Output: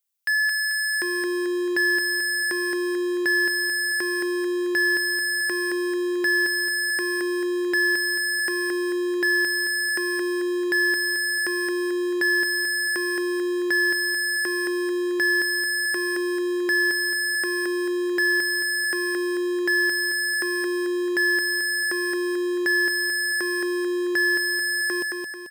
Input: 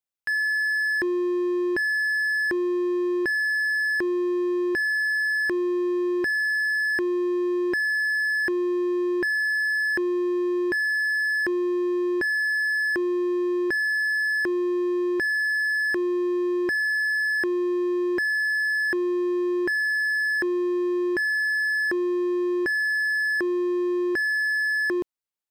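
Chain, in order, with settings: tilt EQ +3.5 dB/octave; feedback delay 220 ms, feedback 47%, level -4 dB

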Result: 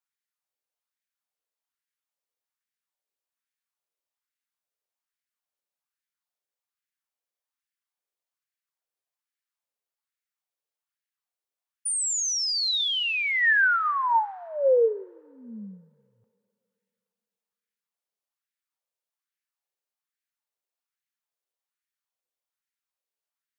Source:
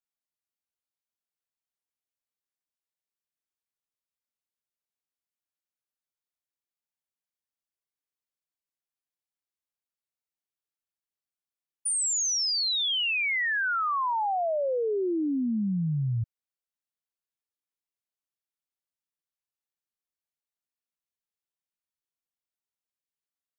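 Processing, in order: LFO high-pass sine 1.2 Hz 430–1800 Hz; two-slope reverb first 0.28 s, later 2.7 s, from -22 dB, DRR 14 dB

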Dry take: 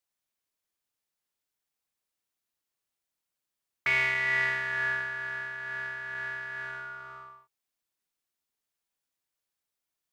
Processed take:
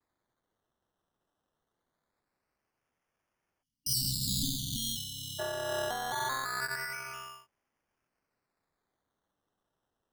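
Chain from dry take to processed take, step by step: 4.00–4.76 s: spectral contrast reduction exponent 0.58; decimation with a swept rate 15×, swing 60% 0.23 Hz; vibrato 0.47 Hz 26 cents; 3.63–5.39 s: spectral selection erased 290–2800 Hz; trim +2.5 dB

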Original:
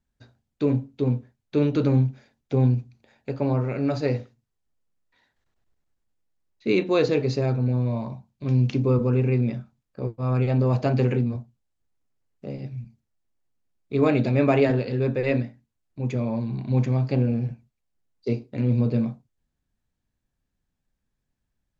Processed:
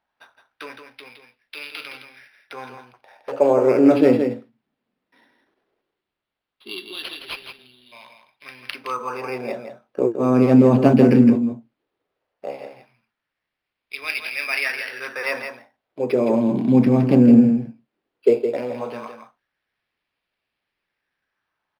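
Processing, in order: 5.82–7.92 s: time-frequency box 430–2700 Hz -23 dB; in parallel at 0 dB: peak limiter -19.5 dBFS, peak gain reduction 10.5 dB; 2.77–3.32 s: on the sum: hard clipper -27.5 dBFS, distortion -29 dB; LFO high-pass sine 0.16 Hz 220–2500 Hz; on a send: delay 165 ms -7.5 dB; on the sum: decimation joined by straight lines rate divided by 6×; trim +3 dB

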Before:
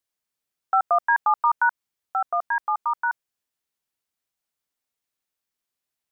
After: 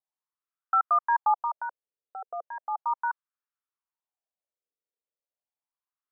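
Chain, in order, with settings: wah-wah 0.36 Hz 450–1300 Hz, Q 3.6

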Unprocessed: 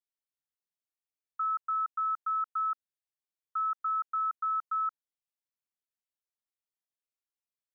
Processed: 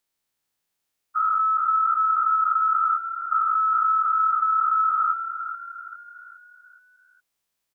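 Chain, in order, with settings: every event in the spectrogram widened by 480 ms; frequency-shifting echo 414 ms, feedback 46%, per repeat +37 Hz, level -10 dB; trim +8.5 dB

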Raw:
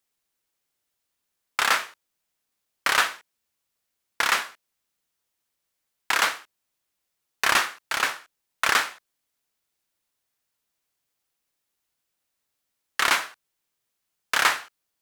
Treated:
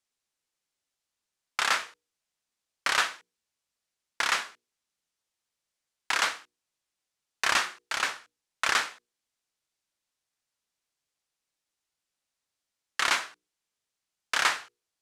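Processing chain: low-pass 7.5 kHz 12 dB/octave; treble shelf 5.2 kHz +6.5 dB; hum notches 60/120/180/240/300/360/420/480 Hz; trim -5 dB

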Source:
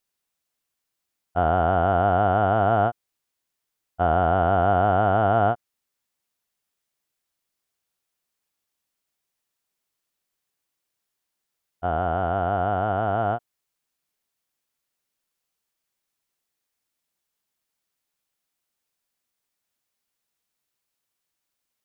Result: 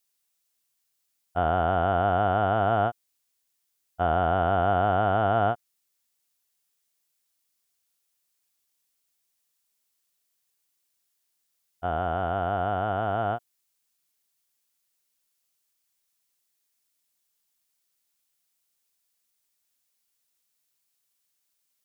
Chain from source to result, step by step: treble shelf 3 kHz +11 dB; trim -4 dB

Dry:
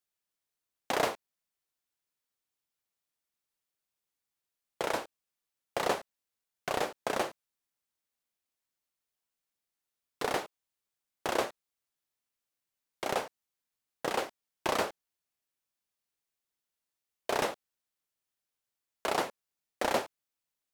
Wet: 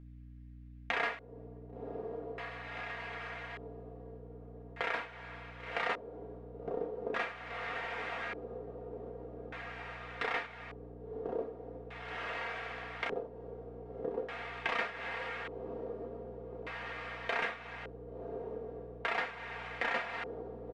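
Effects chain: tilt shelf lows -5.5 dB, about 1.5 kHz; comb 4.3 ms, depth 84%; hum 60 Hz, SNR 16 dB; echo that smears into a reverb 1074 ms, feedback 52%, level -7.5 dB; on a send at -4.5 dB: reverberation, pre-delay 3 ms; on the sum: LFO low-pass square 0.42 Hz 410–2100 Hz; compression 2:1, threshold -42 dBFS, peak gain reduction 12 dB; trim +2.5 dB

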